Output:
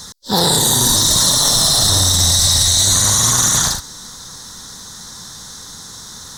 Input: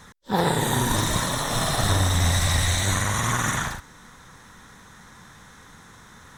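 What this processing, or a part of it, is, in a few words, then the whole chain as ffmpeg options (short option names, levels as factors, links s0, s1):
over-bright horn tweeter: -af "highshelf=f=3300:t=q:w=3:g=11,alimiter=limit=0.266:level=0:latency=1:release=22,volume=2.37"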